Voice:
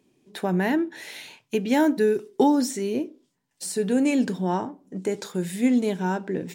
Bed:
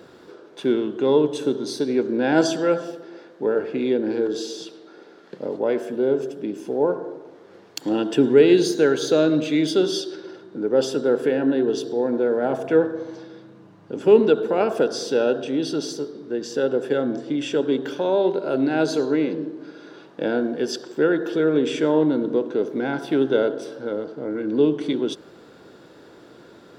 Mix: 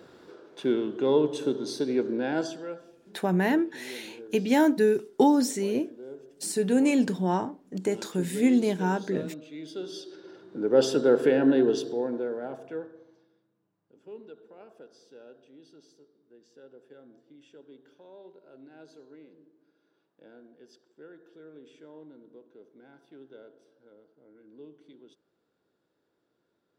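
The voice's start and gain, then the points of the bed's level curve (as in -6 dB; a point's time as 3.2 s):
2.80 s, -1.0 dB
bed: 2.09 s -5 dB
2.91 s -22 dB
9.5 s -22 dB
10.8 s -1 dB
11.63 s -1 dB
13.51 s -30 dB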